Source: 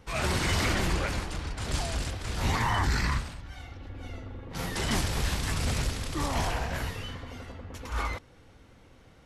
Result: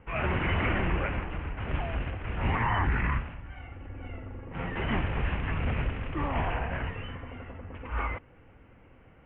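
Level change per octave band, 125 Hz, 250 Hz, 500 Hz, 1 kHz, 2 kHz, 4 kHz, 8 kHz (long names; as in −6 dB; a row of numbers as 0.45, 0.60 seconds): 0.0 dB, 0.0 dB, 0.0 dB, 0.0 dB, 0.0 dB, −9.5 dB, below −40 dB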